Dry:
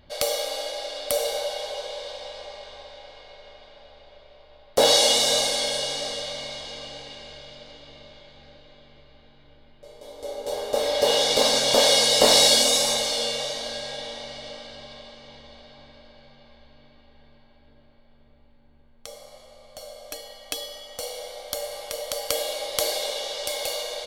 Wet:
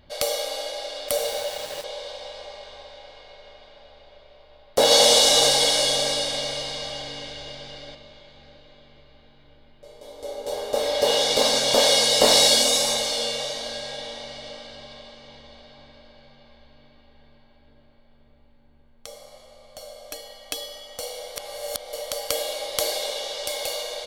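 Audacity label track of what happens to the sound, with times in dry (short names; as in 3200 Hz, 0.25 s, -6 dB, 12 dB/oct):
1.080000	1.840000	sample gate under -32.5 dBFS
4.840000	7.950000	reverse bouncing-ball echo first gap 70 ms, each gap 1.25×, echoes 6, each echo -2 dB
21.360000	21.930000	reverse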